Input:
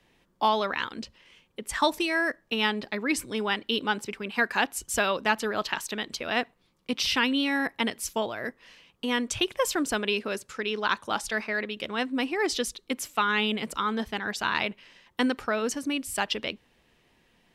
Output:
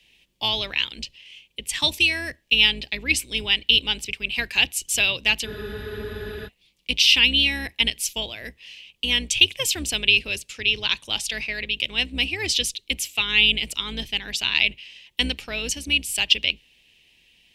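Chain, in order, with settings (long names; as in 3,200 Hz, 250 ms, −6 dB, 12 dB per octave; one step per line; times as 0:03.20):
sub-octave generator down 2 octaves, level +1 dB
high shelf with overshoot 1,900 Hz +12 dB, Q 3
frozen spectrum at 0:05.49, 0.98 s
level −5.5 dB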